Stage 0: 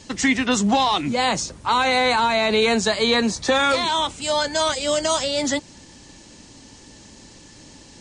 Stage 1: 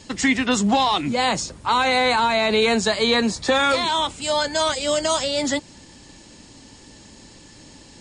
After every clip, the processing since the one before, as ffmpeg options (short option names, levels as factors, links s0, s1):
-af "bandreject=f=6000:w=13"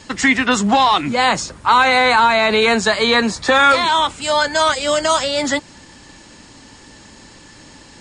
-af "equalizer=f=1400:t=o:w=1.5:g=7.5,volume=1.26"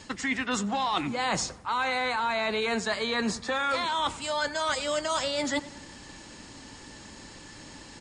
-filter_complex "[0:a]areverse,acompressor=threshold=0.0794:ratio=6,areverse,asplit=2[s0][s1];[s1]adelay=94,lowpass=f=2200:p=1,volume=0.141,asplit=2[s2][s3];[s3]adelay=94,lowpass=f=2200:p=1,volume=0.53,asplit=2[s4][s5];[s5]adelay=94,lowpass=f=2200:p=1,volume=0.53,asplit=2[s6][s7];[s7]adelay=94,lowpass=f=2200:p=1,volume=0.53,asplit=2[s8][s9];[s9]adelay=94,lowpass=f=2200:p=1,volume=0.53[s10];[s0][s2][s4][s6][s8][s10]amix=inputs=6:normalize=0,volume=0.631"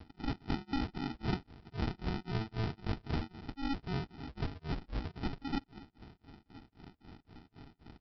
-af "tremolo=f=3.8:d=0.99,aresample=11025,acrusher=samples=20:mix=1:aa=0.000001,aresample=44100,volume=0.631"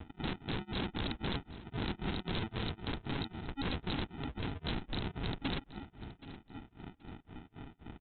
-af "aresample=8000,aeval=exprs='(mod(59.6*val(0)+1,2)-1)/59.6':c=same,aresample=44100,aecho=1:1:775|1550:0.133|0.0307,volume=1.78"